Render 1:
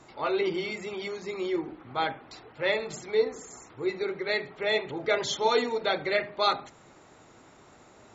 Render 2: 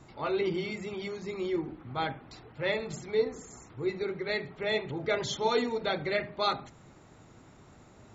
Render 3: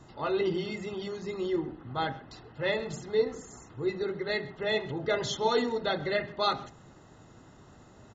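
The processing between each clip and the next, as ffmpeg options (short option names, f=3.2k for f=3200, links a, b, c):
-af "bass=f=250:g=11,treble=f=4k:g=0,volume=-4dB"
-filter_complex "[0:a]asuperstop=centerf=2300:order=12:qfactor=6.7,asplit=2[a][b];[b]adelay=130,highpass=300,lowpass=3.4k,asoftclip=type=hard:threshold=-24.5dB,volume=-18dB[c];[a][c]amix=inputs=2:normalize=0,aresample=16000,aresample=44100,volume=1dB"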